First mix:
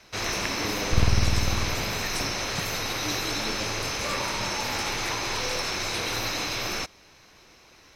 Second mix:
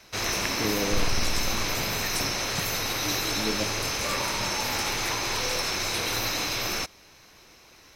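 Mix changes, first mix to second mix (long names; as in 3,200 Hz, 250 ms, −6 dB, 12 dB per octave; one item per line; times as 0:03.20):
speech +6.5 dB
first sound: add high-shelf EQ 10,000 Hz +10 dB
second sound: add parametric band 94 Hz −14.5 dB 2.5 octaves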